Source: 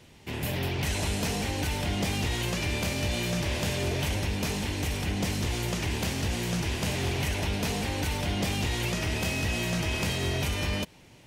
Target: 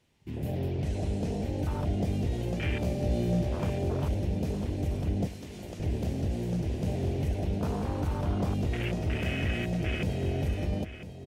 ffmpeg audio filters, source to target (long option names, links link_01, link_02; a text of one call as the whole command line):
ffmpeg -i in.wav -filter_complex "[0:a]asettb=1/sr,asplit=3[link_01][link_02][link_03];[link_01]atrim=end=5.274[link_04];[link_02]atrim=start=5.27:end=5.8,asetpts=PTS-STARTPTS,afade=type=in:duration=0.004:curve=qsin,afade=type=out:start_time=0.526:duration=0.004:curve=qsin,highpass=frequency=770:poles=1[link_05];[link_03]atrim=start=5.796[link_06];[link_04][link_05]acrossfade=duration=0.004:curve1=hsin:curve2=qsin[link_07];[link_07][link_06]acrossfade=duration=0.004:curve1=qsin:curve2=hsin,afwtdn=0.0282,asettb=1/sr,asplit=3[link_08][link_09][link_10];[link_08]atrim=end=0.814[link_11];[link_09]atrim=start=0.81:end=1.59,asetpts=PTS-STARTPTS,afade=type=in:duration=0.004:curve=qsin,afade=type=out:start_time=0.776:duration=0.004:curve=qsin,lowpass=9700[link_12];[link_10]atrim=start=1.586[link_13];[link_11][link_12]acrossfade=duration=0.004:curve1=hsin:curve2=qsin[link_14];[link_14][link_13]acrossfade=duration=0.004:curve1=qsin:curve2=hsin,asettb=1/sr,asplit=3[link_15][link_16][link_17];[link_15]atrim=end=2.794[link_18];[link_16]atrim=start=2.79:end=3.49,asetpts=PTS-STARTPTS,afade=type=in:duration=0.004:curve=qsin,afade=type=out:start_time=0.696:duration=0.004:curve=qsin,asplit=2[link_19][link_20];[link_20]adelay=17,volume=-4.5dB[link_21];[link_19][link_21]amix=inputs=2:normalize=0,atrim=end_sample=30870[link_22];[link_17]atrim=start=3.486[link_23];[link_18][link_22]acrossfade=duration=0.004:curve1=hsin:curve2=qsin[link_24];[link_24][link_23]acrossfade=duration=0.004:curve1=qsin:curve2=hsin,aecho=1:1:1000:0.251" out.wav